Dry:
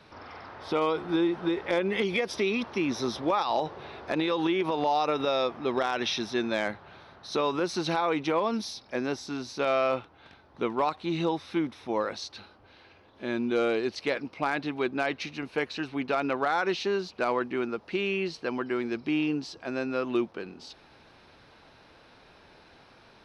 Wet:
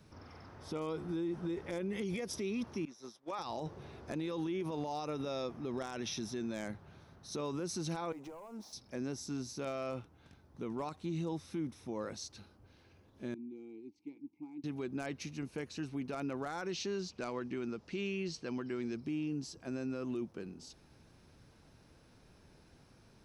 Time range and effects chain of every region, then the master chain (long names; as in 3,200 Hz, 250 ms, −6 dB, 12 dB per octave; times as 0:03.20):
0:02.85–0:03.39: meter weighting curve A + downward expander −27 dBFS
0:08.12–0:08.73: resonant band-pass 800 Hz, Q 1.6 + downward compressor 4 to 1, threshold −44 dBFS + leveller curve on the samples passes 2
0:13.34–0:14.64: formant filter u + parametric band 1,400 Hz −13.5 dB 2.4 octaves
0:16.71–0:18.95: low-pass filter 5,100 Hz + high-shelf EQ 2,700 Hz +9.5 dB
whole clip: drawn EQ curve 150 Hz 0 dB, 770 Hz −14 dB, 4,000 Hz −14 dB, 6,900 Hz +2 dB; brickwall limiter −31 dBFS; level +1 dB